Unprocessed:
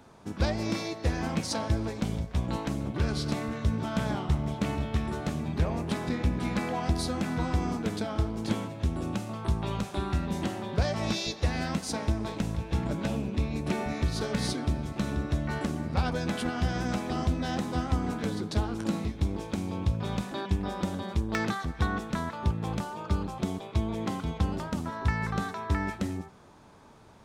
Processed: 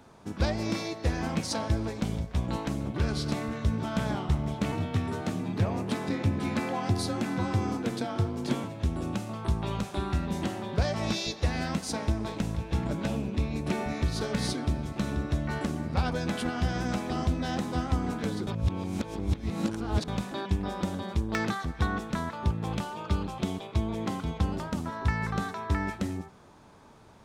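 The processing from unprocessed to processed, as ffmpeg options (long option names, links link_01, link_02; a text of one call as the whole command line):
ffmpeg -i in.wav -filter_complex "[0:a]asettb=1/sr,asplit=3[link_01][link_02][link_03];[link_01]atrim=end=4.724[link_04];[link_02]atrim=start=4.72:end=8.64,asetpts=PTS-STARTPTS,afade=type=in:duration=0.004:curve=qsin,afade=type=out:start_time=3.916:duration=0.004:curve=qsin,afreqshift=28[link_05];[link_03]atrim=start=8.636[link_06];[link_04][link_05]acrossfade=duration=0.004:curve1=hsin:curve2=qsin[link_07];[link_07][link_06]acrossfade=duration=0.004:curve1=qsin:curve2=hsin,asettb=1/sr,asplit=3[link_08][link_09][link_10];[link_08]atrim=end=22.714[link_11];[link_09]atrim=start=22.71:end=23.67,asetpts=PTS-STARTPTS,afade=type=in:duration=0.004:curve=qsin,afade=type=out:start_time=0.956:duration=0.004:curve=qsin,equalizer=frequency=3000:width=1.5:gain=5[link_12];[link_10]atrim=start=23.666[link_13];[link_11][link_12]acrossfade=duration=0.004:curve1=hsin:curve2=qsin[link_14];[link_14][link_13]acrossfade=duration=0.004:curve1=qsin:curve2=hsin,asplit=3[link_15][link_16][link_17];[link_15]atrim=end=18.472[link_18];[link_16]atrim=start=18.468:end=20.082,asetpts=PTS-STARTPTS,areverse[link_19];[link_17]atrim=start=20.078[link_20];[link_18][link_19]acrossfade=duration=0.004:curve1=hsin:curve2=hsin[link_21];[link_21][link_20]acrossfade=duration=0.004:curve1=hsin:curve2=hsin" out.wav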